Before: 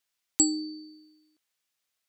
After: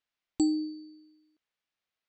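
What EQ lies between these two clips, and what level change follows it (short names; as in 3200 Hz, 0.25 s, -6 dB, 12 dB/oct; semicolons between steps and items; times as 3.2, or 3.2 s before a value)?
high shelf 2500 Hz +10 dB; dynamic EQ 380 Hz, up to +4 dB, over -36 dBFS, Q 1; tape spacing loss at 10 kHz 36 dB; 0.0 dB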